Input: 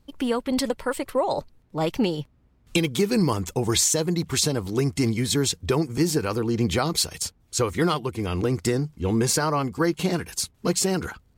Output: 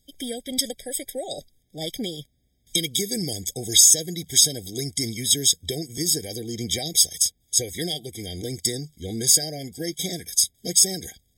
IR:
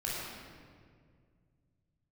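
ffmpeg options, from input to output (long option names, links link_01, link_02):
-af "aexciter=amount=8.4:drive=3.4:freq=2600,afftfilt=real='re*eq(mod(floor(b*sr/1024/780),2),0)':imag='im*eq(mod(floor(b*sr/1024/780),2),0)':win_size=1024:overlap=0.75,volume=-8dB"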